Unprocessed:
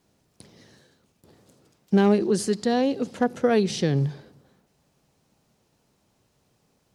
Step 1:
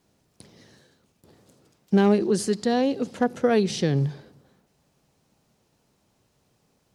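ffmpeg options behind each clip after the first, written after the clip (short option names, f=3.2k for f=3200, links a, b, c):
-af anull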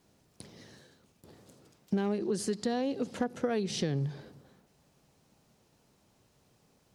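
-af "acompressor=threshold=-29dB:ratio=4"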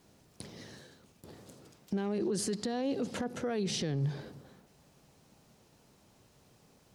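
-af "alimiter=level_in=5.5dB:limit=-24dB:level=0:latency=1:release=13,volume=-5.5dB,volume=4dB"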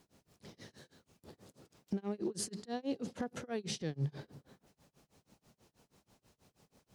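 -af "tremolo=f=6.2:d=0.98,volume=-1.5dB"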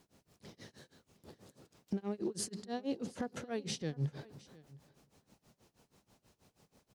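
-af "aecho=1:1:710:0.0841"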